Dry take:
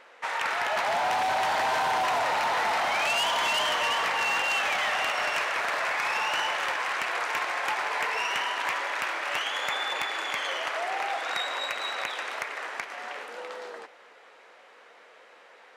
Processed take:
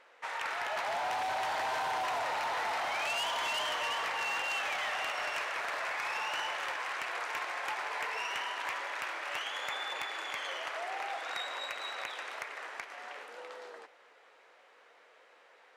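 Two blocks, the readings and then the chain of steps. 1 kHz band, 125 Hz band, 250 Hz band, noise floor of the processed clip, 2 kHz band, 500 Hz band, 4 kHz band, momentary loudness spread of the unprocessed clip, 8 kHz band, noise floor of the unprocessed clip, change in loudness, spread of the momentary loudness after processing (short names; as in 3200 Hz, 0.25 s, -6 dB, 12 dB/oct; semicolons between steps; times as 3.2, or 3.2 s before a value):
-7.5 dB, n/a, -9.5 dB, -61 dBFS, -7.5 dB, -7.5 dB, -7.5 dB, 9 LU, -7.5 dB, -54 dBFS, -7.5 dB, 9 LU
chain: bell 200 Hz -5.5 dB 0.65 oct; gain -7.5 dB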